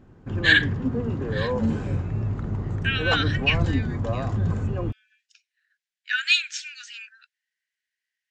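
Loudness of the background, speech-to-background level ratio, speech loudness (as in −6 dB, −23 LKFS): −27.0 LKFS, 3.5 dB, −23.5 LKFS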